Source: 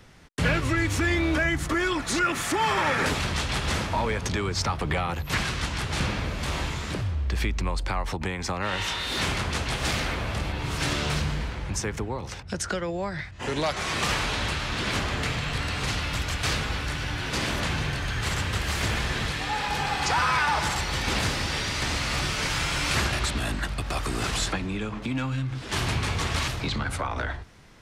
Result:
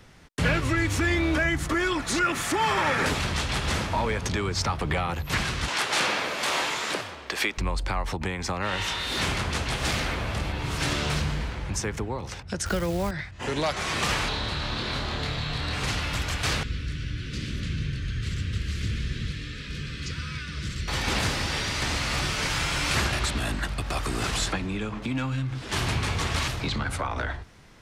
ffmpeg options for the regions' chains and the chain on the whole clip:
ffmpeg -i in.wav -filter_complex "[0:a]asettb=1/sr,asplit=3[link_01][link_02][link_03];[link_01]atrim=end=5.684[link_04];[link_02]atrim=start=5.68:end=7.58,asetpts=PTS-STARTPTS,afade=type=in:duration=0.004:curve=qsin,afade=type=out:start_time=1.896:duration=0.004:curve=qsin,highpass=460,acontrast=68[link_05];[link_03]atrim=start=7.576[link_06];[link_04][link_05]acrossfade=duration=0.004:curve1=hsin:curve2=qsin[link_07];[link_07][link_06]acrossfade=duration=0.004:curve1=qsin:curve2=hsin,asettb=1/sr,asplit=3[link_08][link_09][link_10];[link_08]atrim=end=12.664[link_11];[link_09]atrim=start=12.66:end=13.11,asetpts=PTS-STARTPTS,afade=type=in:duration=0.004:curve=qsin,afade=type=out:start_time=0.446:duration=0.004:curve=qsin,lowshelf=frequency=170:gain=11,acrusher=bits=7:dc=4:mix=0:aa=0.000001[link_12];[link_10]atrim=start=13.106[link_13];[link_11][link_12]acrossfade=duration=0.004:curve1=hsin:curve2=qsin[link_14];[link_14][link_13]acrossfade=duration=0.004:curve1=qsin:curve2=hsin,asettb=1/sr,asplit=3[link_15][link_16][link_17];[link_15]atrim=end=14.284[link_18];[link_16]atrim=start=14.28:end=15.73,asetpts=PTS-STARTPTS,afade=type=in:duration=0.004:curve=qsin,afade=type=out:start_time=1.446:duration=0.004:curve=qsin,asplit=2[link_19][link_20];[link_20]adelay=27,volume=-3dB[link_21];[link_19][link_21]amix=inputs=2:normalize=0,atrim=end_sample=63945,acrossover=split=94|1800[link_22][link_23][link_24];[link_22]acompressor=threshold=-33dB:ratio=4[link_25];[link_23]acompressor=threshold=-31dB:ratio=4[link_26];[link_24]acompressor=threshold=-44dB:ratio=4[link_27];[link_25][link_26][link_27]amix=inputs=3:normalize=0,equalizer=frequency=4000:width_type=o:width=0.62:gain=13.5[link_28];[link_17]atrim=start=15.726[link_29];[link_18][link_28]acrossfade=duration=0.004:curve1=hsin:curve2=qsin[link_30];[link_30][link_29]acrossfade=duration=0.004:curve1=qsin:curve2=hsin,asettb=1/sr,asplit=3[link_31][link_32][link_33];[link_31]atrim=end=16.634[link_34];[link_32]atrim=start=16.63:end=20.88,asetpts=PTS-STARTPTS,afade=type=in:duration=0.004:curve=qsin,afade=type=out:start_time=4.246:duration=0.004:curve=qsin,asuperstop=centerf=810:order=4:qfactor=0.88,aemphasis=mode=reproduction:type=75fm,acrossover=split=250|3000[link_35][link_36][link_37];[link_36]acompressor=threshold=-49dB:ratio=2.5:attack=3.2:release=140:knee=2.83:detection=peak[link_38];[link_35][link_38][link_37]amix=inputs=3:normalize=0[link_39];[link_33]atrim=start=20.876[link_40];[link_34][link_39]acrossfade=duration=0.004:curve1=hsin:curve2=qsin[link_41];[link_41][link_40]acrossfade=duration=0.004:curve1=qsin:curve2=hsin" out.wav

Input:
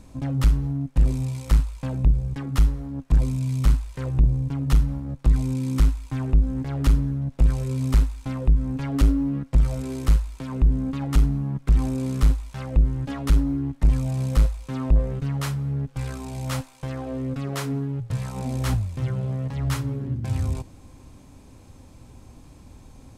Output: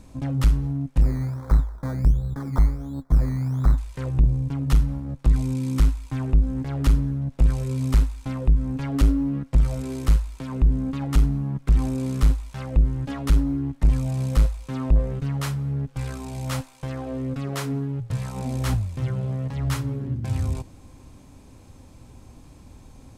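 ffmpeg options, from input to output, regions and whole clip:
ffmpeg -i in.wav -filter_complex "[0:a]asettb=1/sr,asplit=3[link_01][link_02][link_03];[link_01]atrim=end=1.014[link_04];[link_02]atrim=start=1.01:end=3.78,asetpts=PTS-STARTPTS,afade=type=in:duration=0.004:curve=qsin,afade=type=out:start_time=2.766:duration=0.004:curve=qsin,acrusher=samples=16:mix=1:aa=0.000001:lfo=1:lforange=9.6:lforate=1.4,asuperstop=centerf=2800:order=4:qfactor=2.6,highshelf=frequency=1800:width_type=q:width=1.5:gain=-8.5[link_05];[link_03]atrim=start=3.776[link_06];[link_04][link_05]acrossfade=duration=0.004:curve1=hsin:curve2=qsin[link_07];[link_07][link_06]acrossfade=duration=0.004:curve1=qsin:curve2=hsin" out.wav

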